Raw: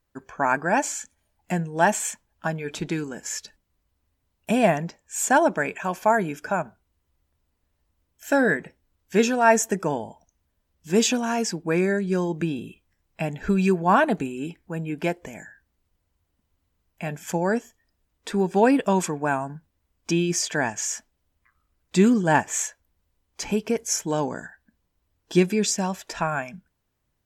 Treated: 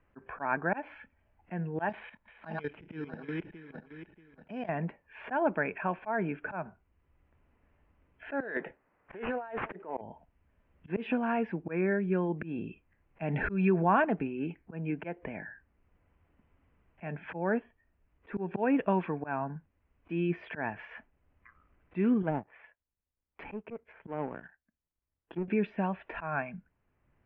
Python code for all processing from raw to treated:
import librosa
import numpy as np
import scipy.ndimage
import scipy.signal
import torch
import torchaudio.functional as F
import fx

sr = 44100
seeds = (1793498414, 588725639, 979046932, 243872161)

y = fx.chain(x, sr, fx.reverse_delay_fb(ms=317, feedback_pct=41, wet_db=-5.5),
    fx.level_steps(step_db=15),
    fx.resample_bad(factor=8, down='filtered', up='zero_stuff'), at=(1.89, 4.69))
y = fx.chain(y, sr, fx.highpass(hz=410.0, slope=12),
    fx.over_compress(threshold_db=-32.0, ratio=-1.0),
    fx.resample_linear(factor=8), at=(8.4, 10.01))
y = fx.chain(y, sr, fx.peak_eq(hz=4200.0, db=6.5, octaves=0.39),
    fx.env_flatten(amount_pct=50), at=(13.22, 14.02))
y = fx.chain(y, sr, fx.env_lowpass_down(base_hz=560.0, full_db=-16.5),
    fx.power_curve(exponent=1.4), at=(22.22, 25.48))
y = scipy.signal.sosfilt(scipy.signal.butter(8, 2700.0, 'lowpass', fs=sr, output='sos'), y)
y = fx.auto_swell(y, sr, attack_ms=185.0)
y = fx.band_squash(y, sr, depth_pct=40)
y = y * 10.0 ** (-4.0 / 20.0)